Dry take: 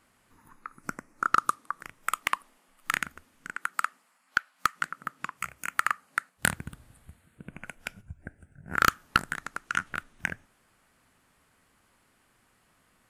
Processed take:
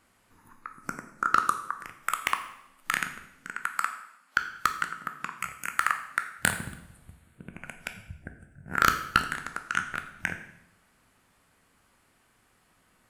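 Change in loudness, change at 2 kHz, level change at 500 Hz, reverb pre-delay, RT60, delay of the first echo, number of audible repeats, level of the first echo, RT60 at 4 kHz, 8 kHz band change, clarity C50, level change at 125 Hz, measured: +1.0 dB, +1.0 dB, +1.0 dB, 12 ms, 0.80 s, no echo, no echo, no echo, 0.70 s, +1.0 dB, 10.5 dB, +0.5 dB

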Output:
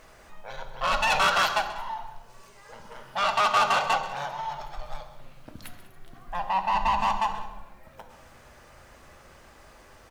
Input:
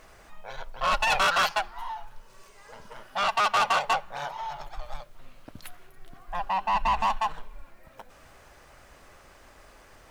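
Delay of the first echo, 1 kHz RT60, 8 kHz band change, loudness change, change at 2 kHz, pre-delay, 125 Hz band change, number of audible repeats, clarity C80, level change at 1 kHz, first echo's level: 132 ms, 0.95 s, +0.5 dB, +1.0 dB, +0.5 dB, 3 ms, +2.0 dB, 2, 10.0 dB, +1.0 dB, -14.5 dB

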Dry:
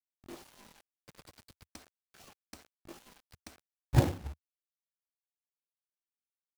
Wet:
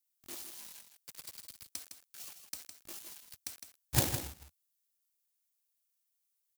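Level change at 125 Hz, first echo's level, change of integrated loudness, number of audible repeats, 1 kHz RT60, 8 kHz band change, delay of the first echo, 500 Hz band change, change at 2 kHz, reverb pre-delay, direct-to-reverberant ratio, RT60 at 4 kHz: -7.5 dB, -8.5 dB, -8.0 dB, 1, no reverb, +12.5 dB, 159 ms, -6.0 dB, +1.5 dB, no reverb, no reverb, no reverb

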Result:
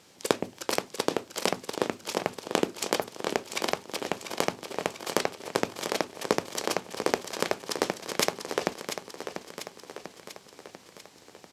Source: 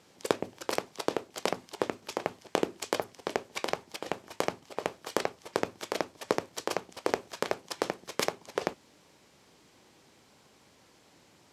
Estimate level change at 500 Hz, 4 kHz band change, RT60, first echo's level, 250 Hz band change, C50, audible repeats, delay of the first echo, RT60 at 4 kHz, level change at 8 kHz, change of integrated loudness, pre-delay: +2.5 dB, +6.0 dB, no reverb, -9.0 dB, +4.0 dB, no reverb, 6, 693 ms, no reverb, +7.0 dB, +3.5 dB, no reverb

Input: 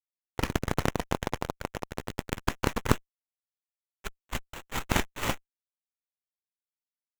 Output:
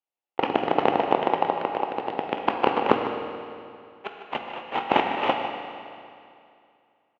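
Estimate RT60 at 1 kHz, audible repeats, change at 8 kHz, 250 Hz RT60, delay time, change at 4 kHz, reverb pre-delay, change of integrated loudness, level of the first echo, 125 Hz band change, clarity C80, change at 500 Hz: 2.5 s, 1, under -20 dB, 2.5 s, 152 ms, +3.5 dB, 16 ms, +6.5 dB, -11.5 dB, -8.5 dB, 4.5 dB, +10.5 dB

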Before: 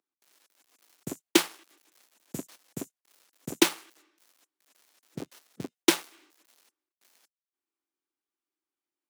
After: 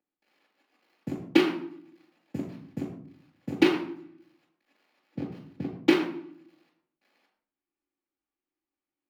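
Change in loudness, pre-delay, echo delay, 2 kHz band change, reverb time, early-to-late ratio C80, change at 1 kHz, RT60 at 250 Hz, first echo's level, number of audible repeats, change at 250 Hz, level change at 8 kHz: 0.0 dB, 3 ms, no echo, +0.5 dB, 0.60 s, 9.5 dB, +0.5 dB, 0.90 s, no echo, no echo, +5.0 dB, under -15 dB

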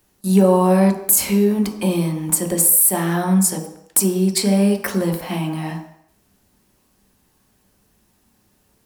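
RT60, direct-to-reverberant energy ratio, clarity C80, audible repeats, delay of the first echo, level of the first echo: 0.70 s, 2.0 dB, 10.5 dB, no echo, no echo, no echo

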